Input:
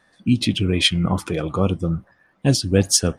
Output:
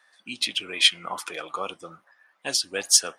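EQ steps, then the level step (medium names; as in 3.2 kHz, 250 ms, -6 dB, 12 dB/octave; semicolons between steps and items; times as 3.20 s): high-pass 950 Hz 12 dB/octave; 0.0 dB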